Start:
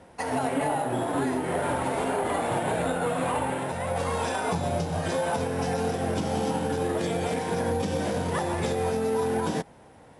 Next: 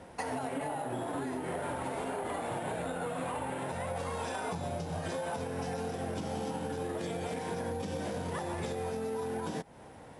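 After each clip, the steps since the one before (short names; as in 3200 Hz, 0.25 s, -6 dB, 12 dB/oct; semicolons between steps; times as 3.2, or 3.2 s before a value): compressor 5:1, threshold -35 dBFS, peak gain reduction 11.5 dB; gain +1 dB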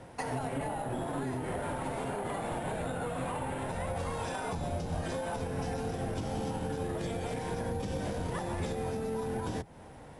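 octaver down 1 oct, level 0 dB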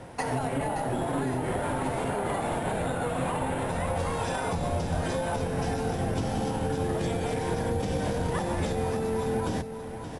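echo 0.574 s -9.5 dB; gain +5.5 dB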